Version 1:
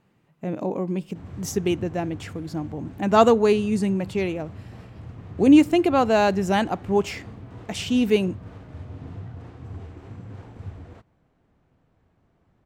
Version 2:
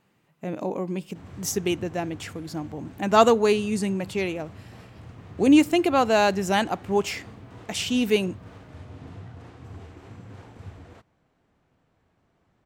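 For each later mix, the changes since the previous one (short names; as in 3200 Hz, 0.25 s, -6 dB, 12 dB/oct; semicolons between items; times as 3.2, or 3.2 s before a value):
master: add tilt +1.5 dB/oct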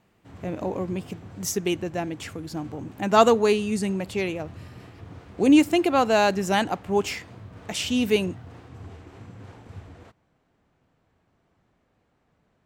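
background: entry -0.90 s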